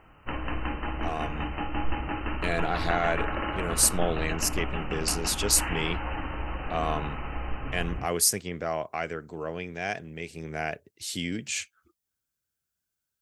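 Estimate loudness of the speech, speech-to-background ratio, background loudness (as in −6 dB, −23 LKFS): −29.0 LKFS, 4.5 dB, −33.5 LKFS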